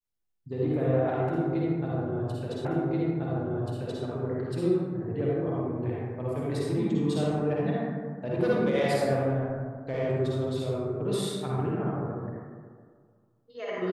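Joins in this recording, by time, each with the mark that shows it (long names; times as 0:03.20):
0:02.65: the same again, the last 1.38 s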